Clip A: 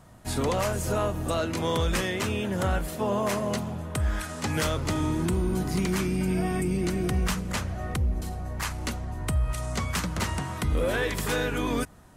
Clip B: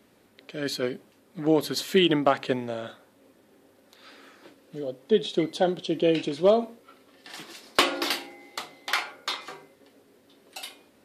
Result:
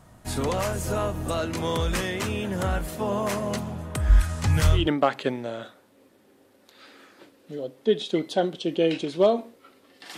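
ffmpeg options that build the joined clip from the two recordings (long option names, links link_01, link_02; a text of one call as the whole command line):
ffmpeg -i cue0.wav -i cue1.wav -filter_complex "[0:a]asplit=3[link_01][link_02][link_03];[link_01]afade=type=out:start_time=4.09:duration=0.02[link_04];[link_02]asubboost=boost=9:cutoff=100,afade=type=in:start_time=4.09:duration=0.02,afade=type=out:start_time=4.89:duration=0.02[link_05];[link_03]afade=type=in:start_time=4.89:duration=0.02[link_06];[link_04][link_05][link_06]amix=inputs=3:normalize=0,apad=whole_dur=10.17,atrim=end=10.17,atrim=end=4.89,asetpts=PTS-STARTPTS[link_07];[1:a]atrim=start=1.95:end=7.41,asetpts=PTS-STARTPTS[link_08];[link_07][link_08]acrossfade=duration=0.18:curve1=tri:curve2=tri" out.wav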